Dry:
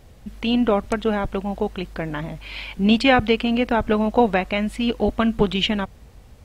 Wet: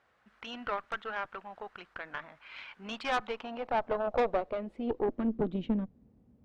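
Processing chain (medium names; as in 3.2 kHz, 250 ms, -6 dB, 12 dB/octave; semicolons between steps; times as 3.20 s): dynamic bell 3.9 kHz, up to +5 dB, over -42 dBFS, Q 2.8; band-pass sweep 1.4 kHz -> 230 Hz, 2.80–5.77 s; valve stage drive 22 dB, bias 0.7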